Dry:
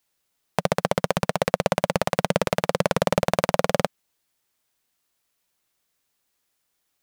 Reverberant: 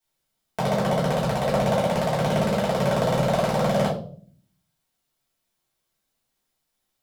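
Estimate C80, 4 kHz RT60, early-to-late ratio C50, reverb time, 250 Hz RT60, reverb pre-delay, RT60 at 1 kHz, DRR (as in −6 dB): 11.0 dB, 0.35 s, 5.0 dB, 0.50 s, 0.85 s, 4 ms, 0.40 s, −8.0 dB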